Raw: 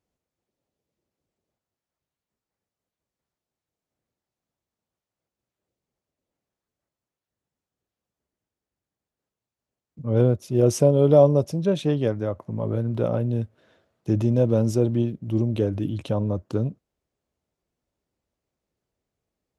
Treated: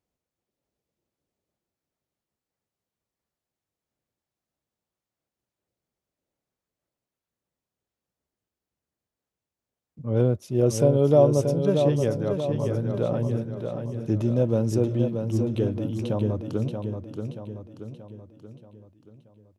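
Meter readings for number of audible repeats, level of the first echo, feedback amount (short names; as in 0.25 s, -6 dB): 5, -6.0 dB, 49%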